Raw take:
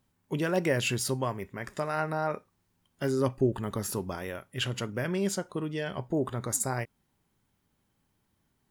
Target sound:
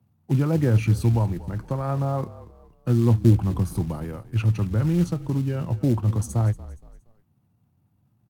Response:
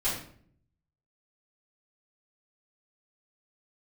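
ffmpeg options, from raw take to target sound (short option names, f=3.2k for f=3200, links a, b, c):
-filter_complex "[0:a]equalizer=f=125:t=o:w=1:g=11,equalizer=f=250:t=o:w=1:g=3,equalizer=f=500:t=o:w=1:g=-5,equalizer=f=2k:t=o:w=1:g=-9,equalizer=f=4k:t=o:w=1:g=-9,equalizer=f=8k:t=o:w=1:g=-12,equalizer=f=16k:t=o:w=1:g=-6,asetrate=46305,aresample=44100,highpass=f=92:w=0.5412,highpass=f=92:w=1.3066,bandreject=f=6.2k:w=14,acrossover=split=160|460|5000[a][b][c][d];[b]acrusher=bits=5:mode=log:mix=0:aa=0.000001[e];[a][e][c][d]amix=inputs=4:normalize=0,asetrate=37084,aresample=44100,atempo=1.18921,asplit=4[f][g][h][i];[g]adelay=234,afreqshift=-36,volume=-17.5dB[j];[h]adelay=468,afreqshift=-72,volume=-25.9dB[k];[i]adelay=702,afreqshift=-108,volume=-34.3dB[l];[f][j][k][l]amix=inputs=4:normalize=0,volume=4.5dB"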